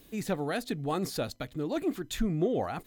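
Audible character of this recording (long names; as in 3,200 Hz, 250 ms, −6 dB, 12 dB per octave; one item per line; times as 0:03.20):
background noise floor −57 dBFS
spectral slope −5.5 dB per octave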